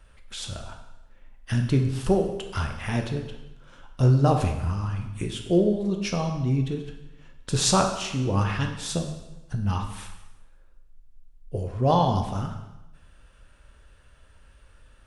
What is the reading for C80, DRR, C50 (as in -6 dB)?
9.0 dB, 3.5 dB, 6.5 dB